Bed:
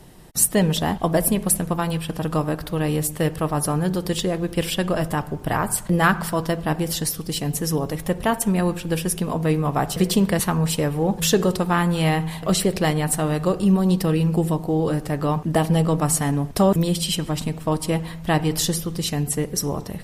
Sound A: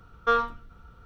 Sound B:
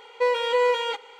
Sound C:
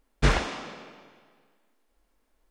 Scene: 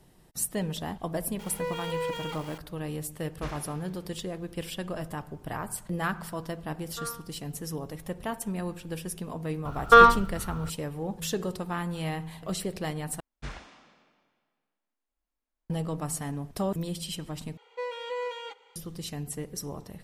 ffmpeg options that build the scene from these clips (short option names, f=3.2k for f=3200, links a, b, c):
-filter_complex "[2:a]asplit=2[a][b];[3:a]asplit=2[c][d];[1:a]asplit=2[e][f];[0:a]volume=-12.5dB[g];[a]aeval=exprs='val(0)+0.5*0.0282*sgn(val(0))':c=same[h];[e]asplit=2[i][j];[j]adelay=60,lowpass=f=1.9k:p=1,volume=-8.5dB,asplit=2[k][l];[l]adelay=60,lowpass=f=1.9k:p=1,volume=0.52,asplit=2[m][n];[n]adelay=60,lowpass=f=1.9k:p=1,volume=0.52,asplit=2[o][p];[p]adelay=60,lowpass=f=1.9k:p=1,volume=0.52,asplit=2[q][r];[r]adelay=60,lowpass=f=1.9k:p=1,volume=0.52,asplit=2[s][t];[t]adelay=60,lowpass=f=1.9k:p=1,volume=0.52[u];[i][k][m][o][q][s][u]amix=inputs=7:normalize=0[v];[f]alimiter=level_in=15.5dB:limit=-1dB:release=50:level=0:latency=1[w];[d]equalizer=f=430:t=o:w=0.73:g=-5.5[x];[g]asplit=3[y][z][aa];[y]atrim=end=13.204[ab];[x]atrim=end=2.5,asetpts=PTS-STARTPTS,volume=-17.5dB[ac];[z]atrim=start=15.696:end=17.574[ad];[b]atrim=end=1.19,asetpts=PTS-STARTPTS,volume=-12.5dB[ae];[aa]atrim=start=18.756[af];[h]atrim=end=1.19,asetpts=PTS-STARTPTS,volume=-12dB,afade=t=in:d=0.004:c=hsin,afade=t=out:st=1.186:d=0.004:c=hsin,adelay=1390[ag];[c]atrim=end=2.5,asetpts=PTS-STARTPTS,volume=-17dB,afade=t=in:d=0.004:c=hsin,afade=t=out:st=2.496:d=0.004:c=hsin,adelay=3190[ah];[v]atrim=end=1.05,asetpts=PTS-STARTPTS,volume=-18dB,afade=t=in:d=0.004:c=hsin,afade=t=out:st=1.046:d=0.004:c=hsin,adelay=6700[ai];[w]atrim=end=1.05,asetpts=PTS-STARTPTS,volume=-3.5dB,afade=t=in:d=0.004:c=hsin,afade=t=out:st=1.046:d=0.004:c=hsin,adelay=9650[aj];[ab][ac]acrossfade=d=0.004:c1=hsin:c2=hsin[ak];[ak][ad]acrossfade=d=0.004:c1=hsin:c2=hsin[al];[al][ae]acrossfade=d=0.004:c1=hsin:c2=hsin[am];[am][af]acrossfade=d=0.004:c1=hsin:c2=hsin[an];[an][ag][ah][ai][aj]amix=inputs=5:normalize=0"